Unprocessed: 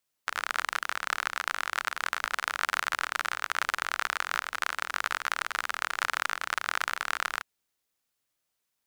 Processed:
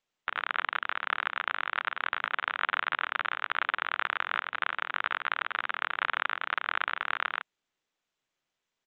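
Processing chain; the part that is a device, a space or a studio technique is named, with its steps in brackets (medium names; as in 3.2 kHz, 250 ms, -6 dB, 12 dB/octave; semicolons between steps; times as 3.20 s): Bluetooth headset (high-pass 130 Hz 24 dB/octave; resampled via 8 kHz; SBC 64 kbps 16 kHz)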